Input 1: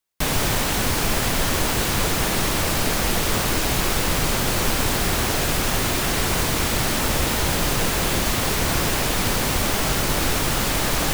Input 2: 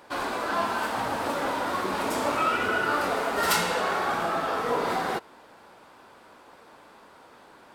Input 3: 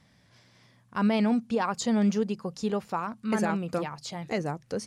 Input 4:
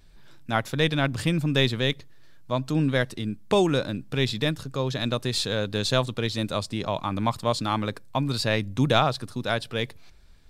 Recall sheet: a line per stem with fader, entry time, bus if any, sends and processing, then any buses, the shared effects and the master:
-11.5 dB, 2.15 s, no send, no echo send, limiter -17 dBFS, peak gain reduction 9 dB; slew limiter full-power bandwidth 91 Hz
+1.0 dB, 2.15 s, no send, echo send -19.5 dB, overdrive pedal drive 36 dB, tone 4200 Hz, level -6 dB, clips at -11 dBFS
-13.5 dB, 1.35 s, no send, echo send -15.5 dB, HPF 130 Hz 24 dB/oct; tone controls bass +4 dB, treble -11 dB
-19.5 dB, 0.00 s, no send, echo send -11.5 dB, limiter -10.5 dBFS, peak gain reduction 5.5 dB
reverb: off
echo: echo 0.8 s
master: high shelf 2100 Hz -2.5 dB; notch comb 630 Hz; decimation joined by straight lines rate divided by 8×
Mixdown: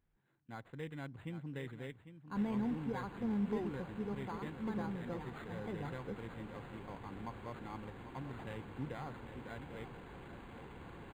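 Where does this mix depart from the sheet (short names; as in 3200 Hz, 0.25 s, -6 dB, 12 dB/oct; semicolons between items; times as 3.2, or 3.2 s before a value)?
stem 1 -11.5 dB -> -20.5 dB; stem 2: muted; stem 3: missing HPF 130 Hz 24 dB/oct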